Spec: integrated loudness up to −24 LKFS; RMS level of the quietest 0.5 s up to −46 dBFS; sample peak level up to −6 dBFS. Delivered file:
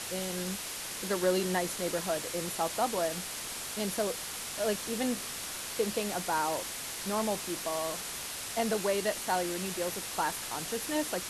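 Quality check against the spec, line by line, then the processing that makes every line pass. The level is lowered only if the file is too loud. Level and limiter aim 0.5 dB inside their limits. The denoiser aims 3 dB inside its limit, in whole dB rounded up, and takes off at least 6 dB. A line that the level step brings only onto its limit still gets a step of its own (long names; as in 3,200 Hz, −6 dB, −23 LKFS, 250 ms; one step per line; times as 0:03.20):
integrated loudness −32.5 LKFS: in spec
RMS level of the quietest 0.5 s −39 dBFS: out of spec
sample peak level −15.5 dBFS: in spec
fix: broadband denoise 10 dB, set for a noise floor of −39 dBFS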